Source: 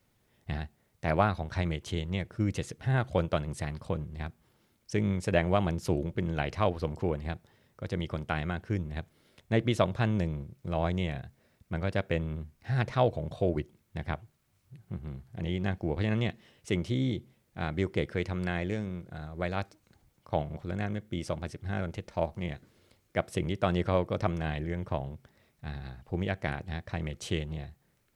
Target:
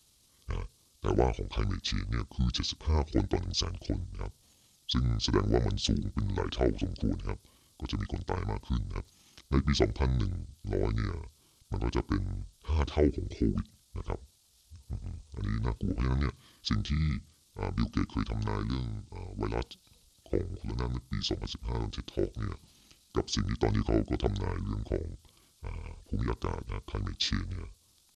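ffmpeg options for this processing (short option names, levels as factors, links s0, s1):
-af "highshelf=f=4500:t=q:w=1.5:g=13,asetrate=26222,aresample=44100,atempo=1.68179"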